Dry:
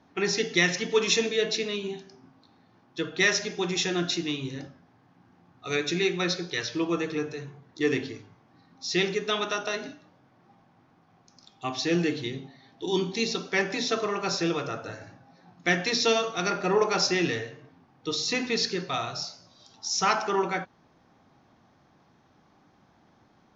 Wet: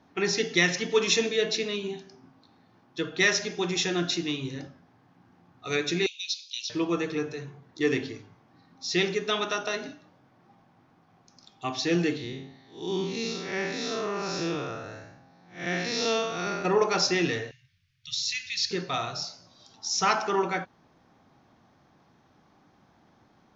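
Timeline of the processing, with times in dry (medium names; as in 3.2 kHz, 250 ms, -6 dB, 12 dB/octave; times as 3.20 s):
6.06–6.70 s: steep high-pass 2.6 kHz 72 dB/octave
12.17–16.65 s: spectral blur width 166 ms
17.51–18.71 s: inverse Chebyshev band-stop 340–690 Hz, stop band 80 dB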